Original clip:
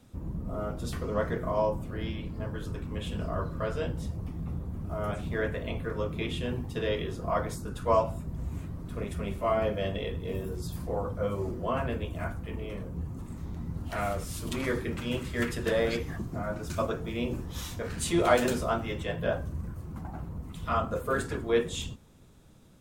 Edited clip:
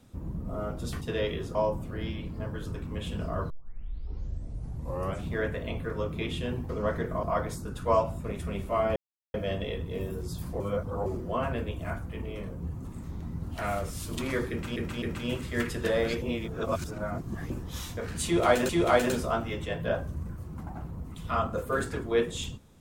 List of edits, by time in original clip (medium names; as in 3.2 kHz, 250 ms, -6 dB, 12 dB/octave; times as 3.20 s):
1.01–1.55 s: swap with 6.69–7.23 s
3.50 s: tape start 1.73 s
8.24–8.96 s: delete
9.68 s: insert silence 0.38 s
10.94–11.40 s: reverse
14.84–15.10 s: loop, 3 plays
16.04–17.32 s: reverse
18.07–18.51 s: loop, 2 plays